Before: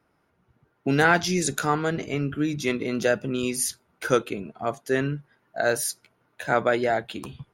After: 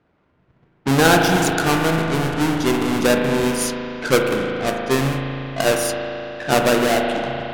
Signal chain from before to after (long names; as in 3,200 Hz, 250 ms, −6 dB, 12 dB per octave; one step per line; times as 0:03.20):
each half-wave held at its own peak
low-pass that shuts in the quiet parts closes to 2,700 Hz, open at −18.5 dBFS
spring reverb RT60 3.4 s, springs 37 ms, chirp 80 ms, DRR 0.5 dB